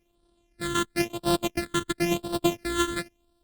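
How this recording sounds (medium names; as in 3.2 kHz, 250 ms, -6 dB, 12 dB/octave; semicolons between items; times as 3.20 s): a buzz of ramps at a fixed pitch in blocks of 128 samples; phasing stages 8, 0.97 Hz, lowest notch 690–2100 Hz; Opus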